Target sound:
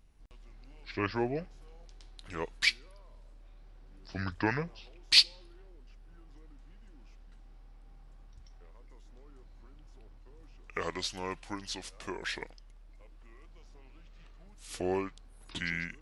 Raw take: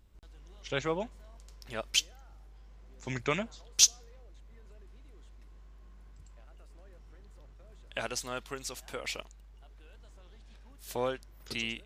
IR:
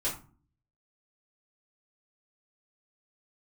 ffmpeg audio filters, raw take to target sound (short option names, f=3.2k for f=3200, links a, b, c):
-af "asetrate=32634,aresample=44100"